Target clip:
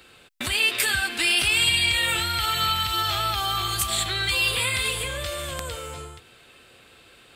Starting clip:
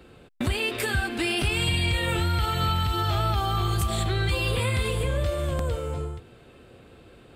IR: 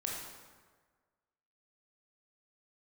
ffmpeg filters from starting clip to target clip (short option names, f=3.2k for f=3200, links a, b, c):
-af "tiltshelf=f=970:g=-10"